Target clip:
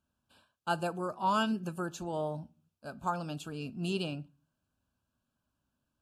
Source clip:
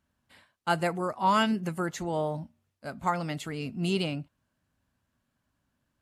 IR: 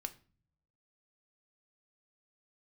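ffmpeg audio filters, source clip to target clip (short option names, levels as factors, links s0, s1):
-filter_complex "[0:a]asuperstop=centerf=2000:order=8:qfactor=2.8,asplit=2[s0][s1];[1:a]atrim=start_sample=2205,afade=t=out:st=0.35:d=0.01,atrim=end_sample=15876[s2];[s1][s2]afir=irnorm=-1:irlink=0,volume=0.631[s3];[s0][s3]amix=inputs=2:normalize=0,volume=0.376"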